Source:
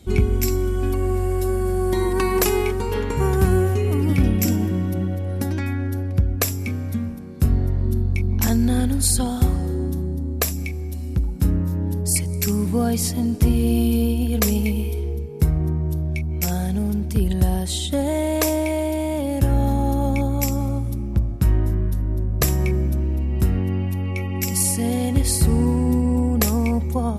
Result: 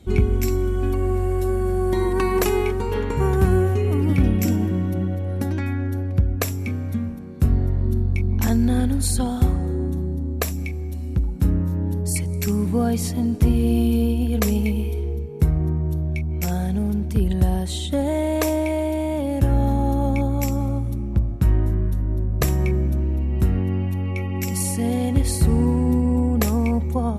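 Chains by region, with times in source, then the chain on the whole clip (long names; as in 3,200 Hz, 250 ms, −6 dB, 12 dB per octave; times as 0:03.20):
0:09.52–0:09.97: low-pass filter 11,000 Hz + parametric band 5,000 Hz −8 dB 0.3 octaves + notch filter 3,100 Hz, Q 11
whole clip: high-shelf EQ 3,900 Hz −7 dB; notch filter 5,000 Hz, Q 15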